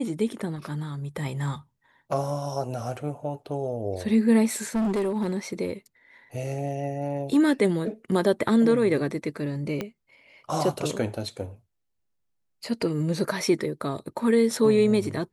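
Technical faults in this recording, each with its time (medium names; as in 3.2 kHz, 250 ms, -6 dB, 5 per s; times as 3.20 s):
4.51–5.36 s: clipped -22 dBFS
9.81 s: pop -16 dBFS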